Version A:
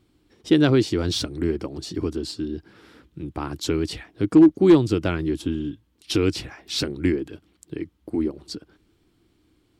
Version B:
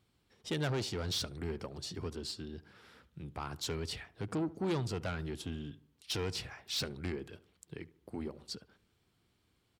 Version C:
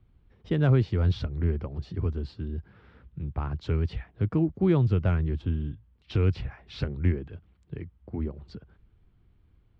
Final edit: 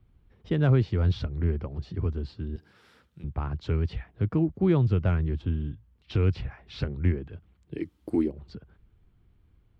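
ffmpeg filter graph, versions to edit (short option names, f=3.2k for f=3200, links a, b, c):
-filter_complex "[2:a]asplit=3[a][b][c];[a]atrim=end=2.562[d];[1:a]atrim=start=2.558:end=3.242[e];[b]atrim=start=3.238:end=7.85[f];[0:a]atrim=start=7.69:end=8.35[g];[c]atrim=start=8.19[h];[d][e]acrossfade=d=0.004:c1=hsin:c2=hsin[i];[i][f]acrossfade=d=0.004:c1=hsin:c2=hsin[j];[j][g]acrossfade=d=0.16:c1=tri:c2=tri[k];[k][h]acrossfade=d=0.16:c1=tri:c2=tri"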